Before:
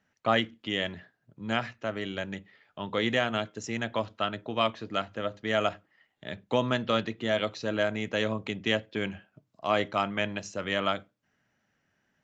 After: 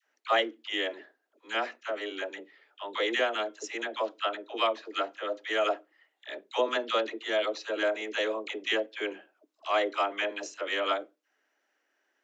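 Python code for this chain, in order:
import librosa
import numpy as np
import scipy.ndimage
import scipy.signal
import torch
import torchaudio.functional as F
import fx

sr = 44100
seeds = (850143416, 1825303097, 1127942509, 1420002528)

y = scipy.signal.sosfilt(scipy.signal.butter(8, 300.0, 'highpass', fs=sr, output='sos'), x)
y = fx.dispersion(y, sr, late='lows', ms=72.0, hz=740.0)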